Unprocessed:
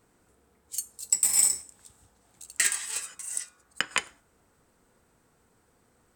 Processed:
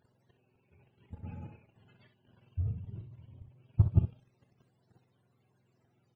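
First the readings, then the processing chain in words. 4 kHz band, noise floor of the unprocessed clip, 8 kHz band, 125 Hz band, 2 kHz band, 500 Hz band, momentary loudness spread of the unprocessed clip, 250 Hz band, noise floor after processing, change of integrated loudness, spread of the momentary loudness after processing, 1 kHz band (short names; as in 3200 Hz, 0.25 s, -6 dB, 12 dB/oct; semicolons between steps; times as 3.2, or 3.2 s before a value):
under -35 dB, -67 dBFS, under -40 dB, n/a, under -30 dB, -3.5 dB, 14 LU, +11.5 dB, -74 dBFS, -7.0 dB, 22 LU, under -15 dB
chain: spectrum mirrored in octaves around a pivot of 420 Hz; level quantiser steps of 11 dB; early reflections 39 ms -14.5 dB, 63 ms -9.5 dB; gain +4 dB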